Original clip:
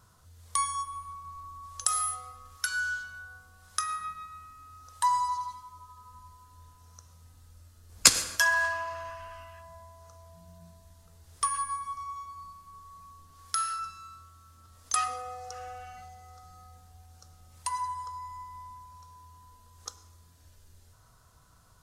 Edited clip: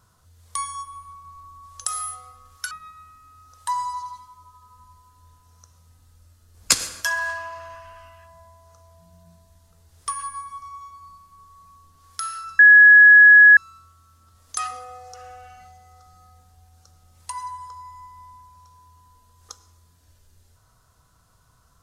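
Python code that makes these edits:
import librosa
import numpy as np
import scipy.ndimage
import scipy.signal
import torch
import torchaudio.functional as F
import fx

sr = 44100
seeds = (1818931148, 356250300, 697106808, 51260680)

y = fx.edit(x, sr, fx.cut(start_s=2.71, length_s=1.35),
    fx.insert_tone(at_s=13.94, length_s=0.98, hz=1680.0, db=-6.0), tone=tone)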